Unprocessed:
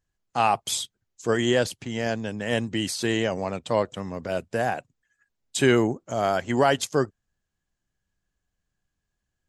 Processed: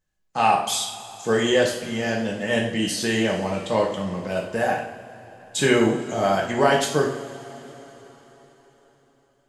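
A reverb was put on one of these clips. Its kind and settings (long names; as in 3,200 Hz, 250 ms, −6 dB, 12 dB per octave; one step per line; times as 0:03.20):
coupled-rooms reverb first 0.55 s, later 4.4 s, from −20 dB, DRR −2.5 dB
level −1 dB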